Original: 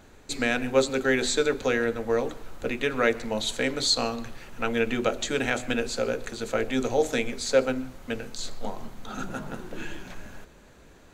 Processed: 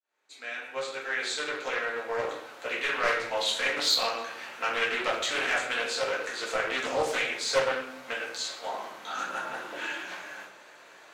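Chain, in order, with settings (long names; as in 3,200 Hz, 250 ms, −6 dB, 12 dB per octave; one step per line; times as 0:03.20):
fade in at the beginning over 3.16 s
Bessel high-pass filter 1,200 Hz, order 2
high-shelf EQ 4,200 Hz −9.5 dB
in parallel at −3 dB: downward compressor, threshold −41 dBFS, peak gain reduction 16 dB
on the sum: soft clipping −23 dBFS, distortion −15 dB
rectangular room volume 110 cubic metres, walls mixed, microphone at 1.6 metres
highs frequency-modulated by the lows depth 0.27 ms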